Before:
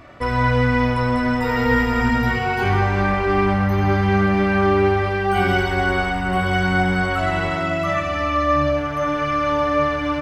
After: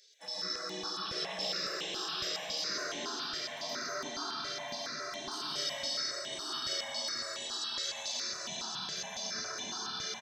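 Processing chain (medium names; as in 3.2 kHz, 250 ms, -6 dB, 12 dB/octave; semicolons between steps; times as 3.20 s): FFT filter 210 Hz 0 dB, 300 Hz -1 dB, 490 Hz -28 dB, 870 Hz +7 dB, 2.8 kHz -25 dB, 6.2 kHz -7 dB, 9.8 kHz -26 dB; in parallel at 0 dB: peak limiter -17.5 dBFS, peak gain reduction 10.5 dB; on the sum: chorus voices 4, 1.2 Hz, delay 30 ms, depth 3 ms; 1.05–2.09 s: valve stage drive 14 dB, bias 0.25; spectral gate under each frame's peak -30 dB weak; high-pass 120 Hz 12 dB/octave; resonant high shelf 2.9 kHz +8.5 dB, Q 3; delay 995 ms -7 dB; algorithmic reverb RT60 3 s, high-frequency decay 0.7×, pre-delay 90 ms, DRR -4.5 dB; stepped phaser 7.2 Hz 240–4800 Hz; trim +2.5 dB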